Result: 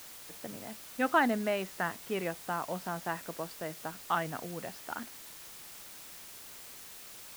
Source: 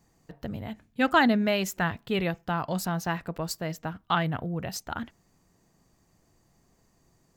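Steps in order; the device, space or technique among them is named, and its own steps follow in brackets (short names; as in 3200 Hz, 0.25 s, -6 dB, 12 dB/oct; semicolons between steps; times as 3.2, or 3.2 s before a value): wax cylinder (BPF 270–2200 Hz; wow and flutter 21 cents; white noise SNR 12 dB); gain -4 dB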